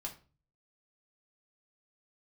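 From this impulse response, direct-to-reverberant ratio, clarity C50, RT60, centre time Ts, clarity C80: -1.0 dB, 12.0 dB, 0.35 s, 13 ms, 17.5 dB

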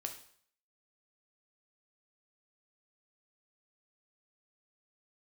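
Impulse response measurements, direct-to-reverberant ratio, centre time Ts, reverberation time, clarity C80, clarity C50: 4.0 dB, 14 ms, 0.60 s, 13.0 dB, 9.5 dB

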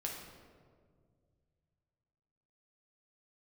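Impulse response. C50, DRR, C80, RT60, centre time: 3.0 dB, -1.5 dB, 5.0 dB, 1.9 s, 59 ms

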